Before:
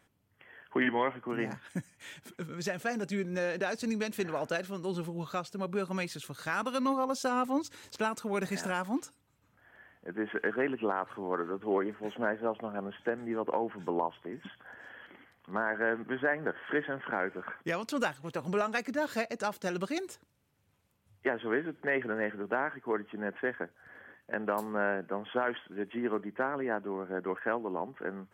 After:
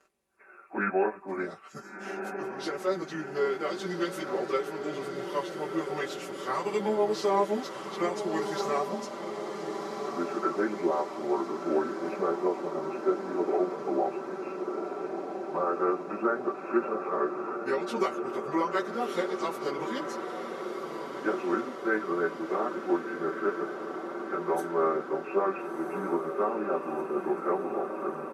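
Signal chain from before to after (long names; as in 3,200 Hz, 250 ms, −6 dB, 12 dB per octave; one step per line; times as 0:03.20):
phase-vocoder pitch shift without resampling −4 semitones
low shelf with overshoot 230 Hz −13 dB, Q 1.5
comb filter 5.2 ms, depth 67%
feedback delay with all-pass diffusion 1,382 ms, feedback 69%, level −7 dB
level +2 dB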